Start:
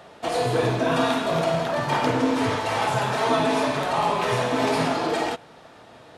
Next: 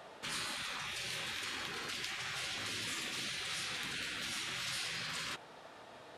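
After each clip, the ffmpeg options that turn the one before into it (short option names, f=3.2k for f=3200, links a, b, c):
-af "lowshelf=f=350:g=-7.5,afftfilt=real='re*lt(hypot(re,im),0.0631)':imag='im*lt(hypot(re,im),0.0631)':win_size=1024:overlap=0.75,volume=-4.5dB"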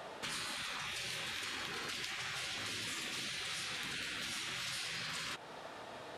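-af "acompressor=threshold=-45dB:ratio=3,volume=5dB"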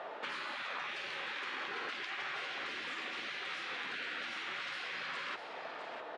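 -af "highpass=380,lowpass=2.3k,aecho=1:1:654:0.335,volume=4.5dB"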